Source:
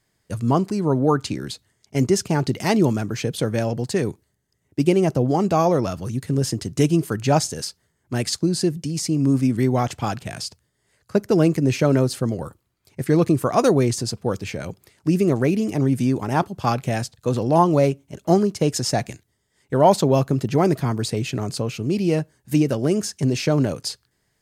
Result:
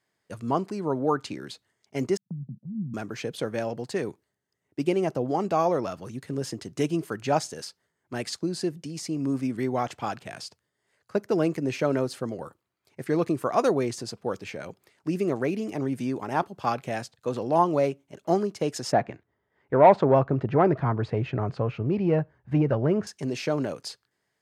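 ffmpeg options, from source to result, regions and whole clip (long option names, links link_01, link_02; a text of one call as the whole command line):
ffmpeg -i in.wav -filter_complex "[0:a]asettb=1/sr,asplit=3[link_01][link_02][link_03];[link_01]atrim=end=2.174[link_04];[link_02]atrim=start=2.17:end=2.94,asetpts=PTS-STARTPTS,afade=type=in:duration=0.004:curve=qsin,afade=type=out:start_time=0.766:duration=0.004:curve=qsin,asuperpass=centerf=160:order=8:qfactor=1.5,agate=range=-28dB:threshold=-36dB:ratio=16:release=100:detection=peak[link_05];[link_03]atrim=start=2.936[link_06];[link_04][link_05]acrossfade=duration=0.004:curve1=hsin:curve2=qsin[link_07];[link_07][link_06]acrossfade=duration=0.004:curve1=qsin:curve2=hsin,asettb=1/sr,asplit=3[link_08][link_09][link_10];[link_08]atrim=end=18.924[link_11];[link_09]atrim=start=18.92:end=23.07,asetpts=PTS-STARTPTS,afade=type=in:duration=0.004:curve=qsin,afade=type=out:start_time=4.146:duration=0.004:curve=qsin,lowpass=1600,asubboost=boost=8.5:cutoff=98,acontrast=73[link_12];[link_10]atrim=start=23.066[link_13];[link_11][link_12]acrossfade=duration=0.004:curve1=hsin:curve2=qsin[link_14];[link_14][link_13]acrossfade=duration=0.004:curve1=qsin:curve2=hsin,highpass=frequency=440:poles=1,highshelf=frequency=4000:gain=-10.5,volume=-2.5dB" out.wav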